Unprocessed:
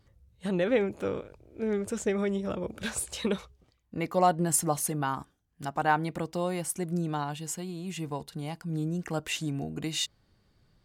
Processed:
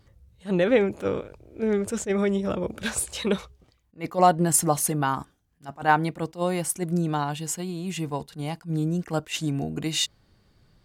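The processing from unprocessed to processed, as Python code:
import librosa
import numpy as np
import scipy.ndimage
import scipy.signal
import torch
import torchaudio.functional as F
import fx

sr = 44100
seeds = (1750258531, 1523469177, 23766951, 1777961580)

y = fx.attack_slew(x, sr, db_per_s=300.0)
y = F.gain(torch.from_numpy(y), 5.5).numpy()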